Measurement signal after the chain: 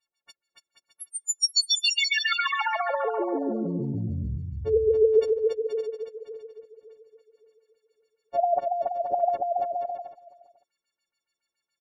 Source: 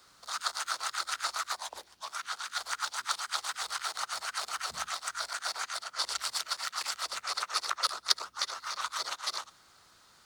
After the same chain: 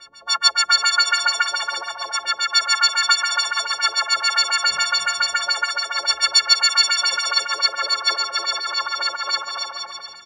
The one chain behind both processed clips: partials quantised in pitch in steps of 4 st; echo from a far wall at 84 m, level -21 dB; LFO low-pass sine 7.1 Hz 390–5800 Hz; on a send: bouncing-ball echo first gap 280 ms, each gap 0.7×, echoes 5; on the sum: trim +5.5 dB

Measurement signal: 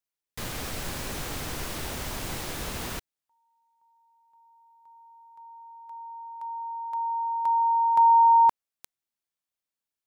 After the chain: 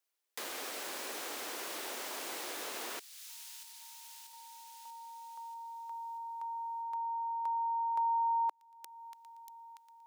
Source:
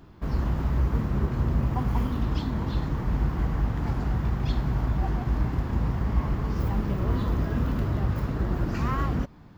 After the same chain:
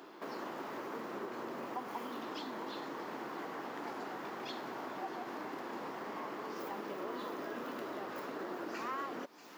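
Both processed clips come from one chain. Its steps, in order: high-pass 330 Hz 24 dB/octave; on a send: feedback echo behind a high-pass 637 ms, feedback 57%, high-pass 3.8 kHz, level -13 dB; on the sum: compression 2:1, threshold -52 dBFS; trim +5 dB

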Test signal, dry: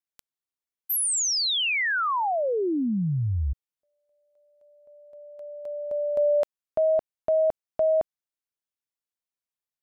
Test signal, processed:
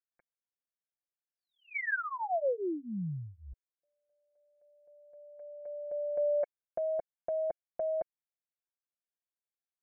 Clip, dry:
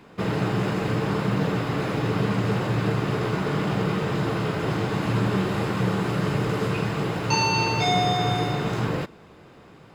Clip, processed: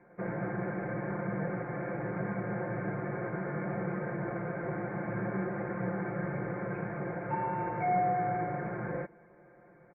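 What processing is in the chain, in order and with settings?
rippled Chebyshev low-pass 2.3 kHz, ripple 9 dB; comb 5.7 ms, depth 96%; trim -7 dB

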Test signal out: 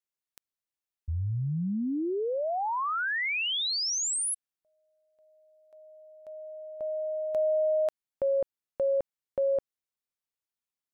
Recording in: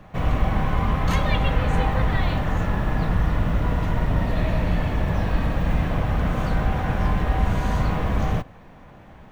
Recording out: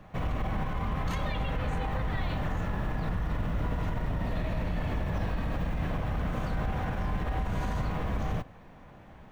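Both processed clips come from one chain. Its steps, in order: peak limiter -17.5 dBFS; trim -5 dB

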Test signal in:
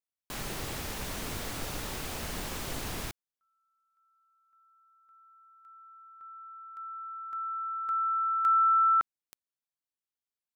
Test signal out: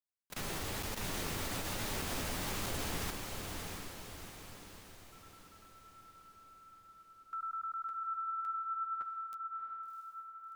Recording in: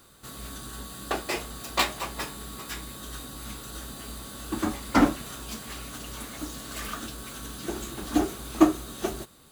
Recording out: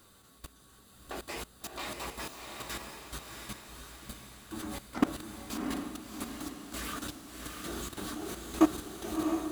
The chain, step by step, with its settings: flange 1.1 Hz, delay 9.1 ms, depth 3.3 ms, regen -23%; level held to a coarse grid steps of 21 dB; echo that smears into a reverb 685 ms, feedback 50%, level -4 dB; trim +3 dB

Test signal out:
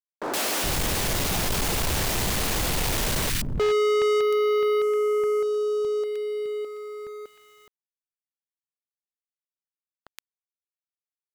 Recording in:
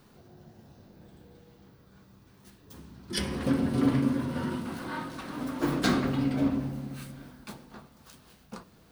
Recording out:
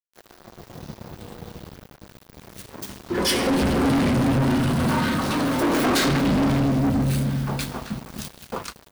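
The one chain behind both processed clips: three bands offset in time mids, highs, lows 120/420 ms, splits 270/1400 Hz; waveshaping leveller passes 5; small samples zeroed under -48 dBFS

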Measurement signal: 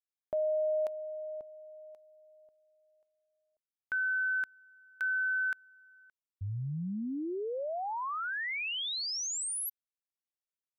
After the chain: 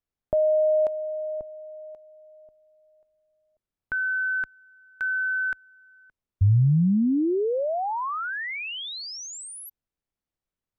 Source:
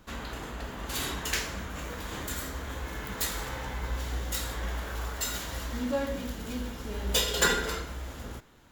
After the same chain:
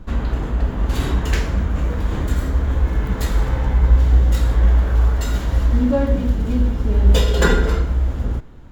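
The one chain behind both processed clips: tilt EQ -3.5 dB/octave; trim +7 dB

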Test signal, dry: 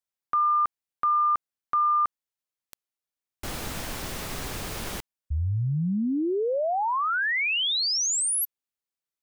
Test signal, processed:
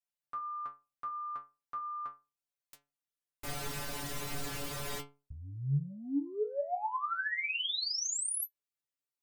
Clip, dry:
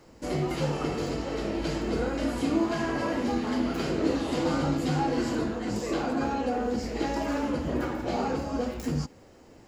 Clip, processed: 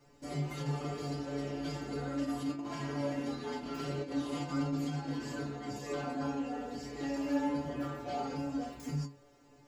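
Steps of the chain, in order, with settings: compressor with a negative ratio -27 dBFS, ratio -0.5; inharmonic resonator 140 Hz, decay 0.3 s, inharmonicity 0.002; trim +3 dB

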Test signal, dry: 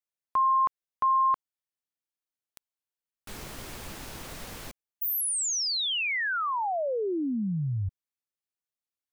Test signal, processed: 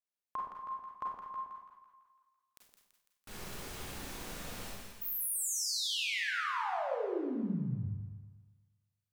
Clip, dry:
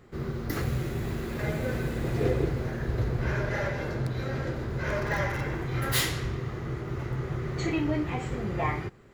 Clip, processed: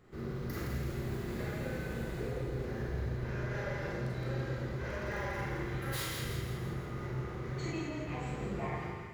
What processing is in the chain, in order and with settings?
compression 4:1, threshold -31 dBFS; two-band feedback delay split 990 Hz, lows 119 ms, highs 167 ms, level -5 dB; Schroeder reverb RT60 0.51 s, combs from 31 ms, DRR -1.5 dB; trim -8 dB

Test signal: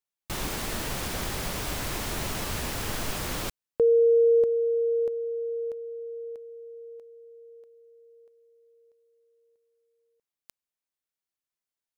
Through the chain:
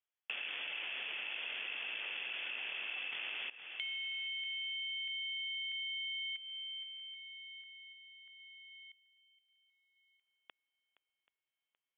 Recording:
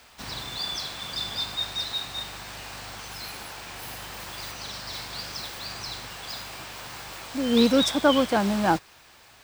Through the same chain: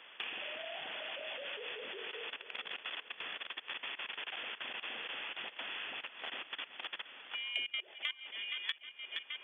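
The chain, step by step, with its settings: ring modulator 750 Hz; frequency inversion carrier 3.4 kHz; dynamic bell 1.1 kHz, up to -5 dB, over -49 dBFS, Q 2.4; level held to a coarse grid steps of 22 dB; shuffle delay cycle 782 ms, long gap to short 1.5:1, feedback 40%, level -17.5 dB; compression 6:1, threshold -50 dBFS; high-pass 380 Hz 12 dB/octave; treble shelf 2.6 kHz +8 dB; trim +7.5 dB

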